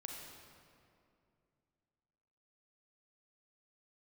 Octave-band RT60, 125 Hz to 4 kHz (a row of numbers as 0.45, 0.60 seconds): 3.1, 3.0, 2.7, 2.3, 2.0, 1.6 seconds